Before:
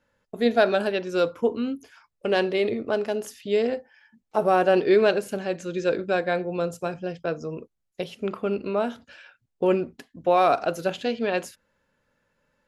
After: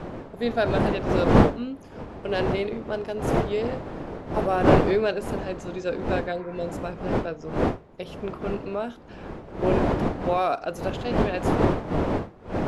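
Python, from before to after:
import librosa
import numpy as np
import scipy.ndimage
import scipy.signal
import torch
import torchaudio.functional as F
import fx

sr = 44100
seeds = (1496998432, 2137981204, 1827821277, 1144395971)

y = fx.dmg_wind(x, sr, seeds[0], corner_hz=510.0, level_db=-22.0)
y = fx.spec_repair(y, sr, seeds[1], start_s=6.34, length_s=0.31, low_hz=860.0, high_hz=2600.0, source='after')
y = y * librosa.db_to_amplitude(-4.5)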